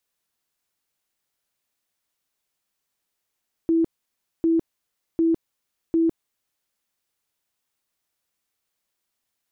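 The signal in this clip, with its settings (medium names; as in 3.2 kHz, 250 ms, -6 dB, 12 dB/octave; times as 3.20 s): tone bursts 329 Hz, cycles 51, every 0.75 s, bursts 4, -16 dBFS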